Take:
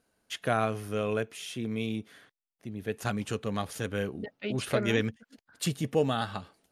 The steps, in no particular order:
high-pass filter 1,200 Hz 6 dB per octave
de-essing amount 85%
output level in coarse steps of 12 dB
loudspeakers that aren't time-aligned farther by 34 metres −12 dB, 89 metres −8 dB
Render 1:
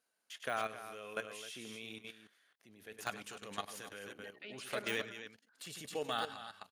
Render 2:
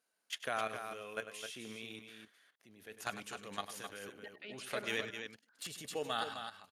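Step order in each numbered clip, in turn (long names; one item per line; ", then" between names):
loudspeakers that aren't time-aligned, then de-essing, then high-pass filter, then output level in coarse steps
high-pass filter, then output level in coarse steps, then loudspeakers that aren't time-aligned, then de-essing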